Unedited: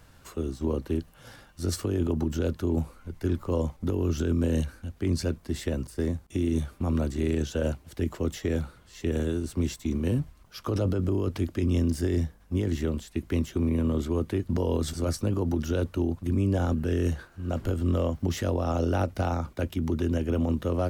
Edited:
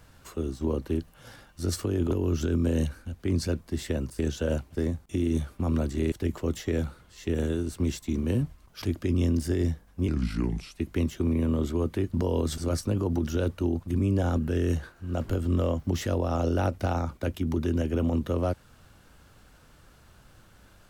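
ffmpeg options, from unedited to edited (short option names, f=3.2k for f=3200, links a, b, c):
-filter_complex "[0:a]asplit=8[a][b][c][d][e][f][g][h];[a]atrim=end=2.112[i];[b]atrim=start=3.878:end=5.962[j];[c]atrim=start=7.328:end=7.892[k];[d]atrim=start=5.958:end=7.332[l];[e]atrim=start=7.888:end=10.592[m];[f]atrim=start=11.348:end=12.614[n];[g]atrim=start=12.61:end=13.1,asetpts=PTS-STARTPTS,asetrate=32634,aresample=44100,atrim=end_sample=29201,asetpts=PTS-STARTPTS[o];[h]atrim=start=13.096[p];[i][j]acrossfade=d=0.004:c1=hsin:c2=hsin[q];[q][k]acrossfade=d=0.004:c1=hsin:c2=hsin[r];[r][l]acrossfade=d=0.004:c1=hsin:c2=hsin[s];[s][m]acrossfade=d=0.004:c1=hsin:c2=hsin[t];[t][n]acrossfade=d=0.004:c1=hsin:c2=hsin[u];[u][o]acrossfade=d=0.004:c1=hsin:c2=hsin[v];[v][p]acrossfade=d=0.004:c1=hsin:c2=hsin"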